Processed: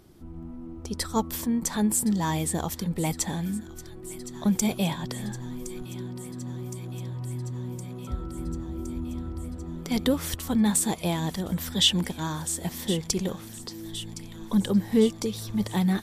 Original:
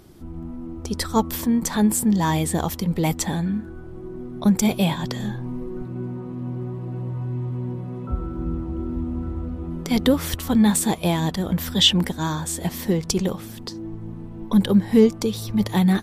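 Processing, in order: dynamic EQ 8300 Hz, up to +5 dB, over -39 dBFS, Q 0.83; on a send: thin delay 1.065 s, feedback 76%, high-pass 1600 Hz, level -14.5 dB; on the sum: gain -6 dB

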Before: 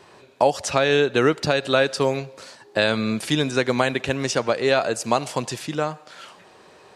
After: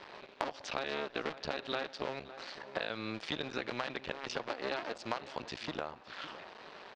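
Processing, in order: cycle switcher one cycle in 2, muted; LPF 4700 Hz 24 dB/oct; low shelf 280 Hz -11 dB; compressor 3:1, threshold -43 dBFS, peak gain reduction 20 dB; outdoor echo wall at 96 m, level -14 dB; gain +3.5 dB

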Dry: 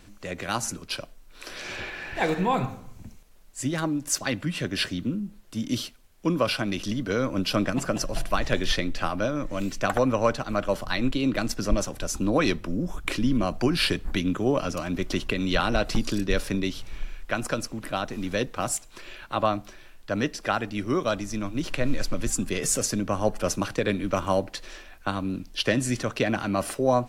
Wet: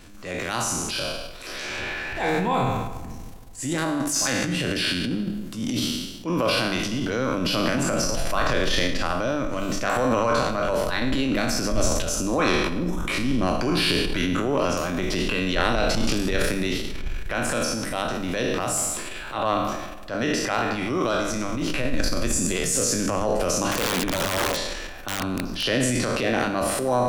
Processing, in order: spectral trails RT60 0.78 s; in parallel at +2 dB: compressor 8:1, threshold -30 dBFS, peak gain reduction 16.5 dB; on the sum: transient shaper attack -7 dB, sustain +10 dB; 23.71–25.63 wrapped overs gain 14 dB; notches 50/100/150/200 Hz; on a send: darkening echo 0.156 s, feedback 63%, low-pass 1800 Hz, level -15.5 dB; on the sum: gain -3.5 dB

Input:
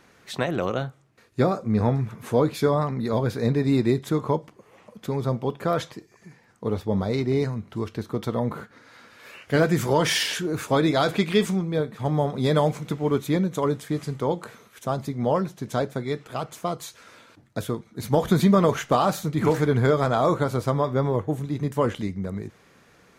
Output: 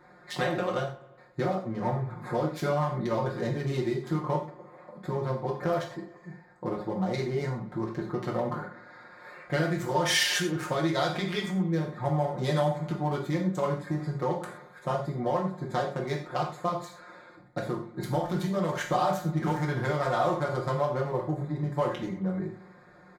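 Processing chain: Wiener smoothing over 15 samples; comb 5.6 ms, depth 93%; compressor 5:1, threshold -25 dBFS, peak gain reduction 14 dB; low shelf 420 Hz -8 dB; notch 2600 Hz, Q 22; on a send: darkening echo 90 ms, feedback 65%, low-pass 4300 Hz, level -19.5 dB; on the sum: non-linear reverb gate 0.15 s falling, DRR 0 dB; gain +1 dB

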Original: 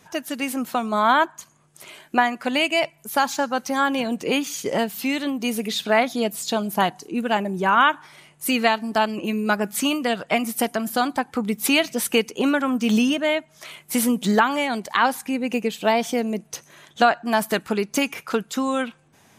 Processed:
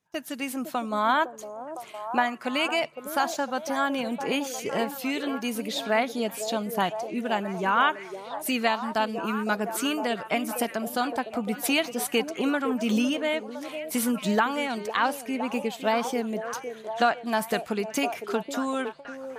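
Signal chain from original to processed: delay with a stepping band-pass 0.508 s, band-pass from 450 Hz, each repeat 0.7 oct, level -5 dB; gate with hold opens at -27 dBFS; gain -5.5 dB

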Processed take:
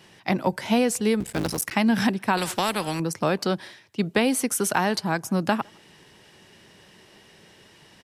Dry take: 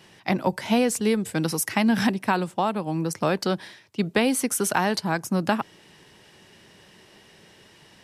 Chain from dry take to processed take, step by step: 1.2–1.72 cycle switcher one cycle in 3, muted; speakerphone echo 0.16 s, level -29 dB; 2.37–3 spectral compressor 2:1

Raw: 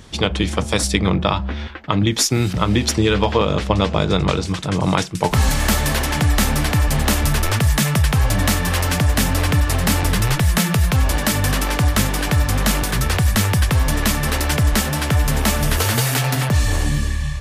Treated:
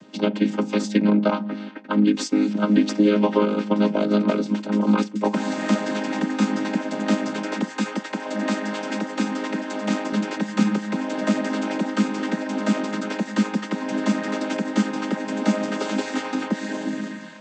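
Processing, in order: chord vocoder major triad, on G#3; 7.71–10.13 low shelf 190 Hz -9.5 dB; gain -1.5 dB

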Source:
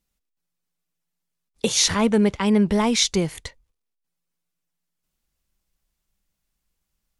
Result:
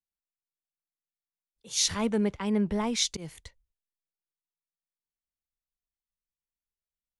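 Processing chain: auto swell 0.113 s; three-band expander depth 40%; gain -9 dB

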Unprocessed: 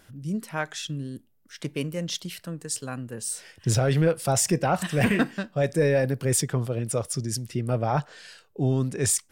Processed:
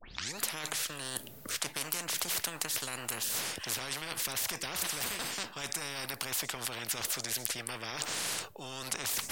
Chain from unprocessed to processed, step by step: tape start at the beginning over 0.39 s; reverse; compressor 12:1, threshold -37 dBFS, peak gain reduction 20 dB; reverse; maximiser +31.5 dB; spectral compressor 10:1; gain -7 dB

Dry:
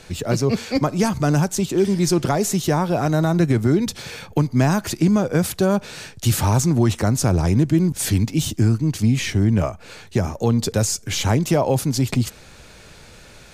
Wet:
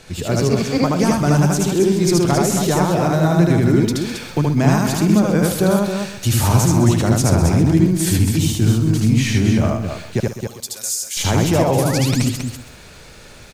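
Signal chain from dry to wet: 10.2–11.17 differentiator; 11.72–12.23 painted sound rise 670–9200 Hz -34 dBFS; on a send: loudspeakers at several distances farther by 26 m -1 dB, 93 m -6 dB; on the sum: lo-fi delay 0.13 s, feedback 35%, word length 7-bit, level -11.5 dB

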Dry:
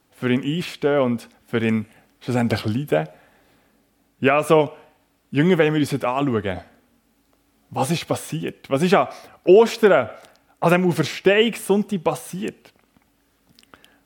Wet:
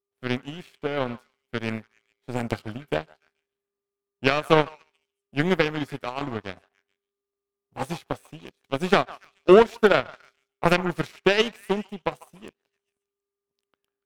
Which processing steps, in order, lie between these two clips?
delay with a stepping band-pass 0.144 s, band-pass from 1100 Hz, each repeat 0.7 oct, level -5.5 dB; whine 400 Hz -45 dBFS; power-law curve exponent 2; gain +1.5 dB

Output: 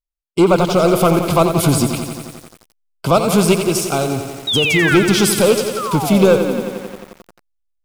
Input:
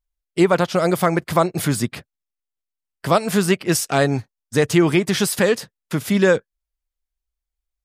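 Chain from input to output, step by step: in parallel at -5.5 dB: backlash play -31 dBFS; 3.54–4.91 on the sum: compressor 2.5:1, threshold -20 dBFS, peak gain reduction 9 dB; sample leveller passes 2; 5.76–6.62 painted sound fall 210–1400 Hz -19 dBFS; Butterworth band-stop 1800 Hz, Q 2.5; 4.47–4.97 painted sound fall 1300–3900 Hz -13 dBFS; lo-fi delay 88 ms, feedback 80%, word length 5-bit, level -8.5 dB; gain -5 dB

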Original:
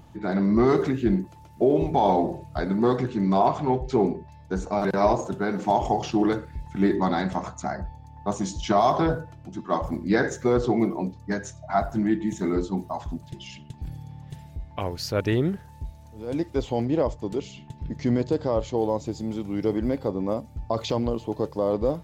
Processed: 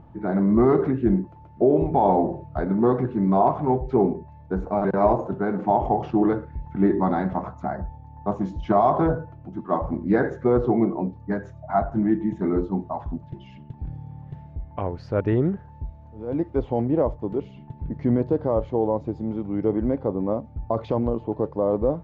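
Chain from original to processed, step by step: LPF 1300 Hz 12 dB/oct; gain +2 dB

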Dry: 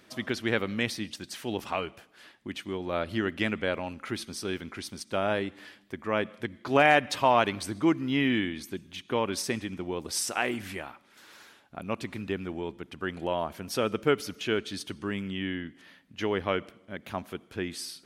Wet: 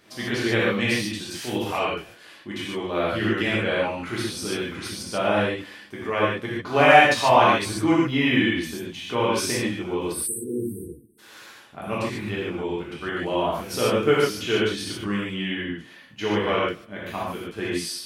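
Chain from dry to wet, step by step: spectral delete 10.12–11.19, 490–8000 Hz; non-linear reverb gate 0.17 s flat, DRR -7.5 dB; gain -1 dB

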